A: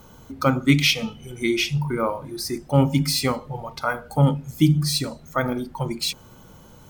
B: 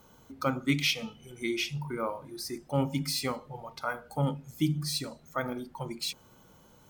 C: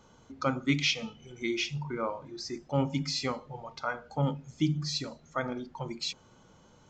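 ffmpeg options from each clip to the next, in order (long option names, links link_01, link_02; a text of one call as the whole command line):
ffmpeg -i in.wav -af "lowshelf=frequency=140:gain=-7.5,volume=-8.5dB" out.wav
ffmpeg -i in.wav -af "aresample=16000,aresample=44100" out.wav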